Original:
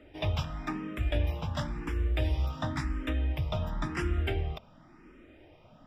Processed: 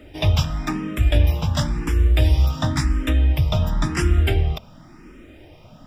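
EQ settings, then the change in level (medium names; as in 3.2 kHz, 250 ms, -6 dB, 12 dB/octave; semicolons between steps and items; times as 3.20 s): tone controls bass +5 dB, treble +11 dB; +8.0 dB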